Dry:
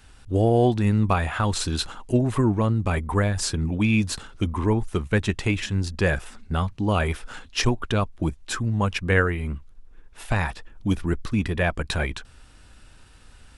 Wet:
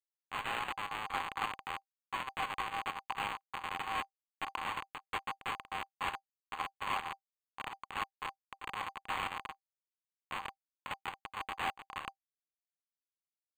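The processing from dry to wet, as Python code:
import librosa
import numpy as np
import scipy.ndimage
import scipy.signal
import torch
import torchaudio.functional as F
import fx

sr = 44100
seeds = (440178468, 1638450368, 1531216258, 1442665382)

y = fx.delta_mod(x, sr, bps=32000, step_db=-35.0)
y = fx.schmitt(y, sr, flips_db=-22.0)
y = fx.chopper(y, sr, hz=4.4, depth_pct=65, duty_pct=80)
y = scipy.signal.sosfilt(scipy.signal.cheby1(6, 9, 760.0, 'highpass', fs=sr, output='sos'), y)
y = np.interp(np.arange(len(y)), np.arange(len(y))[::8], y[::8])
y = y * 10.0 ** (5.0 / 20.0)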